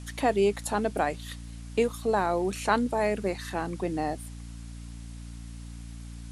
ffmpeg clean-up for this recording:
ffmpeg -i in.wav -af "adeclick=threshold=4,bandreject=frequency=57.7:width_type=h:width=4,bandreject=frequency=115.4:width_type=h:width=4,bandreject=frequency=173.1:width_type=h:width=4,bandreject=frequency=230.8:width_type=h:width=4,bandreject=frequency=288.5:width_type=h:width=4,afwtdn=0.0022" out.wav

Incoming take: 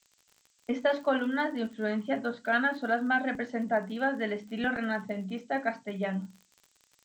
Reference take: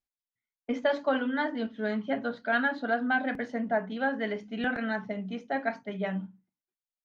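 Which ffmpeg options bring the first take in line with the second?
ffmpeg -i in.wav -af "adeclick=threshold=4,agate=range=-21dB:threshold=-59dB" out.wav

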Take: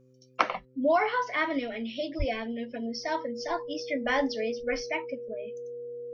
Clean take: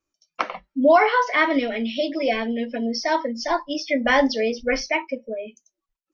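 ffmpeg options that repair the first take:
ffmpeg -i in.wav -filter_complex "[0:a]bandreject=frequency=128.6:width_type=h:width=4,bandreject=frequency=257.2:width_type=h:width=4,bandreject=frequency=385.8:width_type=h:width=4,bandreject=frequency=514.4:width_type=h:width=4,bandreject=frequency=480:width=30,asplit=3[link_01][link_02][link_03];[link_01]afade=type=out:start_time=2.18:duration=0.02[link_04];[link_02]highpass=frequency=140:width=0.5412,highpass=frequency=140:width=1.3066,afade=type=in:start_time=2.18:duration=0.02,afade=type=out:start_time=2.3:duration=0.02[link_05];[link_03]afade=type=in:start_time=2.3:duration=0.02[link_06];[link_04][link_05][link_06]amix=inputs=3:normalize=0,asetnsamples=nb_out_samples=441:pad=0,asendcmd='0.65 volume volume 9dB',volume=0dB" out.wav

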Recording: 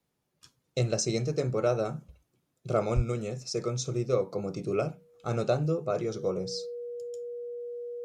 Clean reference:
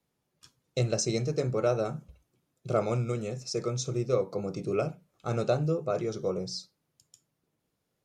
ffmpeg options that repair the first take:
ffmpeg -i in.wav -filter_complex "[0:a]bandreject=frequency=480:width=30,asplit=3[link_01][link_02][link_03];[link_01]afade=type=out:start_time=2.95:duration=0.02[link_04];[link_02]highpass=frequency=140:width=0.5412,highpass=frequency=140:width=1.3066,afade=type=in:start_time=2.95:duration=0.02,afade=type=out:start_time=3.07:duration=0.02[link_05];[link_03]afade=type=in:start_time=3.07:duration=0.02[link_06];[link_04][link_05][link_06]amix=inputs=3:normalize=0" out.wav

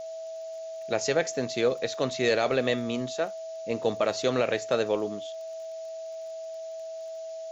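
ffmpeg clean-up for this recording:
ffmpeg -i in.wav -af "adeclick=threshold=4,bandreject=frequency=650:width=30,afftdn=noise_reduction=30:noise_floor=-38" out.wav

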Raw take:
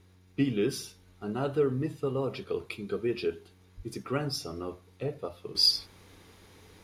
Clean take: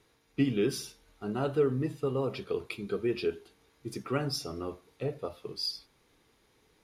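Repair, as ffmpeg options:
ffmpeg -i in.wav -filter_complex "[0:a]adeclick=threshold=4,bandreject=frequency=91.9:width_type=h:width=4,bandreject=frequency=183.8:width_type=h:width=4,bandreject=frequency=275.7:width_type=h:width=4,bandreject=frequency=367.6:width_type=h:width=4,asplit=3[link_01][link_02][link_03];[link_01]afade=type=out:start_time=3.76:duration=0.02[link_04];[link_02]highpass=frequency=140:width=0.5412,highpass=frequency=140:width=1.3066,afade=type=in:start_time=3.76:duration=0.02,afade=type=out:start_time=3.88:duration=0.02[link_05];[link_03]afade=type=in:start_time=3.88:duration=0.02[link_06];[link_04][link_05][link_06]amix=inputs=3:normalize=0,asetnsamples=nb_out_samples=441:pad=0,asendcmd='5.55 volume volume -11dB',volume=0dB" out.wav

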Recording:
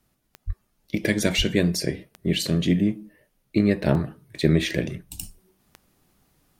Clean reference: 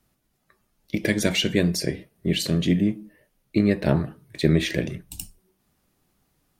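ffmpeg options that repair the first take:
ffmpeg -i in.wav -filter_complex "[0:a]adeclick=threshold=4,asplit=3[link_01][link_02][link_03];[link_01]afade=type=out:start_time=0.46:duration=0.02[link_04];[link_02]highpass=frequency=140:width=0.5412,highpass=frequency=140:width=1.3066,afade=type=in:start_time=0.46:duration=0.02,afade=type=out:start_time=0.58:duration=0.02[link_05];[link_03]afade=type=in:start_time=0.58:duration=0.02[link_06];[link_04][link_05][link_06]amix=inputs=3:normalize=0,asplit=3[link_07][link_08][link_09];[link_07]afade=type=out:start_time=1.37:duration=0.02[link_10];[link_08]highpass=frequency=140:width=0.5412,highpass=frequency=140:width=1.3066,afade=type=in:start_time=1.37:duration=0.02,afade=type=out:start_time=1.49:duration=0.02[link_11];[link_09]afade=type=in:start_time=1.49:duration=0.02[link_12];[link_10][link_11][link_12]amix=inputs=3:normalize=0,asetnsamples=nb_out_samples=441:pad=0,asendcmd='5.23 volume volume -4.5dB',volume=0dB" out.wav

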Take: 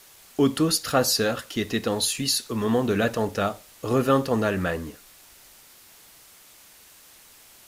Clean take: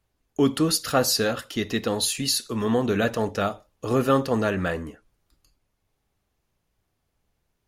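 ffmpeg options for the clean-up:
ffmpeg -i in.wav -af "afwtdn=0.0032" out.wav

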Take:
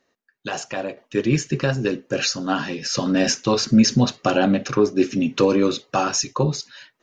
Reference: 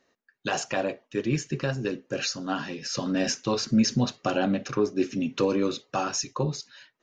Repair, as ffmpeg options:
ffmpeg -i in.wav -af "asetnsamples=nb_out_samples=441:pad=0,asendcmd='0.97 volume volume -7dB',volume=0dB" out.wav

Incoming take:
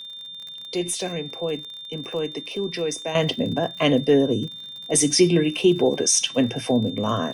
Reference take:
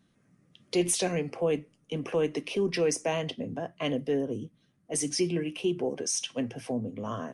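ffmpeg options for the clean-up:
ffmpeg -i in.wav -af "adeclick=threshold=4,bandreject=frequency=3600:width=30,asetnsamples=nb_out_samples=441:pad=0,asendcmd='3.15 volume volume -11dB',volume=0dB" out.wav

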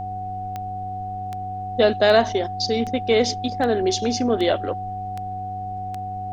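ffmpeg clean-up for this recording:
ffmpeg -i in.wav -af "adeclick=threshold=4,bandreject=frequency=98.2:width_type=h:width=4,bandreject=frequency=196.4:width_type=h:width=4,bandreject=frequency=294.6:width_type=h:width=4,bandreject=frequency=392.8:width_type=h:width=4,bandreject=frequency=491:width_type=h:width=4,bandreject=frequency=740:width=30,agate=range=-21dB:threshold=-22dB" out.wav

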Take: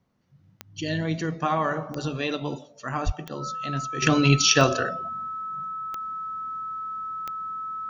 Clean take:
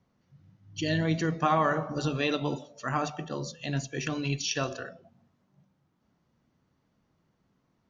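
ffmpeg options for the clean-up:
ffmpeg -i in.wav -filter_complex "[0:a]adeclick=threshold=4,bandreject=frequency=1300:width=30,asplit=3[link_01][link_02][link_03];[link_01]afade=type=out:start_time=3.05:duration=0.02[link_04];[link_02]highpass=frequency=140:width=0.5412,highpass=frequency=140:width=1.3066,afade=type=in:start_time=3.05:duration=0.02,afade=type=out:start_time=3.17:duration=0.02[link_05];[link_03]afade=type=in:start_time=3.17:duration=0.02[link_06];[link_04][link_05][link_06]amix=inputs=3:normalize=0,asetnsamples=nb_out_samples=441:pad=0,asendcmd='4.02 volume volume -12dB',volume=0dB" out.wav

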